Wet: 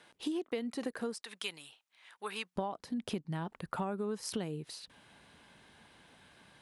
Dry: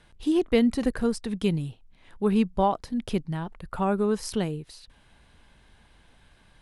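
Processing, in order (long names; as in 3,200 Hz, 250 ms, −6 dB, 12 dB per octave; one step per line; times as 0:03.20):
high-pass filter 300 Hz 12 dB per octave, from 0:01.22 1,200 Hz, from 0:02.56 150 Hz
downward compressor 10 to 1, threshold −34 dBFS, peak gain reduction 16.5 dB
level +1 dB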